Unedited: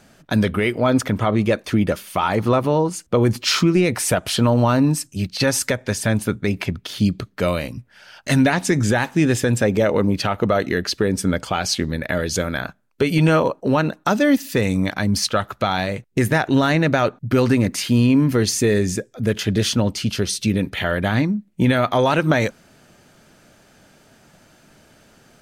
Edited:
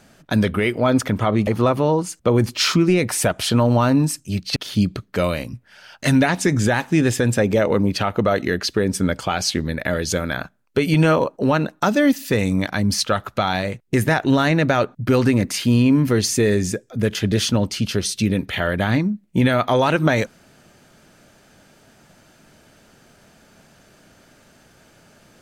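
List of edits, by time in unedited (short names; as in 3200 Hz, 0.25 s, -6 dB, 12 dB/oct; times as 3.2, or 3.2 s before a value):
1.47–2.34 cut
5.43–6.8 cut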